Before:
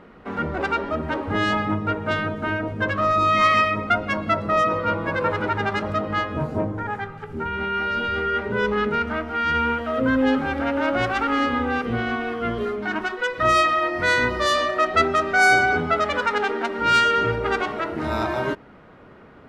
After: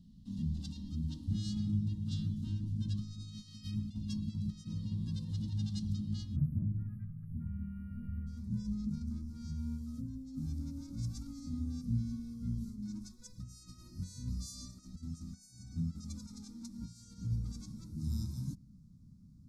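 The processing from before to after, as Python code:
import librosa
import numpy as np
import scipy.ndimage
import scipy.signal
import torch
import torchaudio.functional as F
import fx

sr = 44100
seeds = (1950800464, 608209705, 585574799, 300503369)

y = fx.over_compress(x, sr, threshold_db=-22.0, ratio=-0.5)
y = fx.cheby2_bandstop(y, sr, low_hz=370.0, high_hz=fx.steps((0.0, 2400.0), (6.35, 7000.0), (8.26, 3100.0)), order=4, stop_db=40)
y = F.gain(torch.from_numpy(y), -4.5).numpy()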